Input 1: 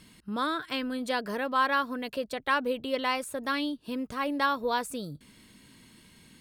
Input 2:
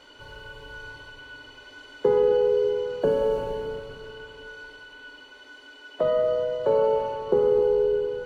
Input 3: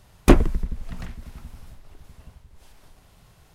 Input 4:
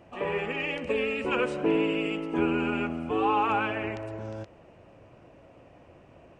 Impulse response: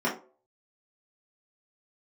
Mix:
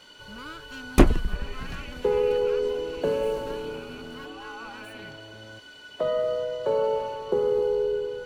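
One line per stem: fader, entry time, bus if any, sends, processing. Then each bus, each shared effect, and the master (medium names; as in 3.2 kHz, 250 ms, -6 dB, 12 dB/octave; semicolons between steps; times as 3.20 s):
-11.0 dB, 0.00 s, bus A, no send, comb filter that takes the minimum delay 0.71 ms
-3.5 dB, 0.00 s, no bus, no send, treble shelf 2.5 kHz +9.5 dB
-2.5 dB, 0.70 s, no bus, no send, none
-9.5 dB, 1.15 s, bus A, no send, none
bus A: 0.0 dB, peak limiter -33.5 dBFS, peak gain reduction 11.5 dB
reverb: none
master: none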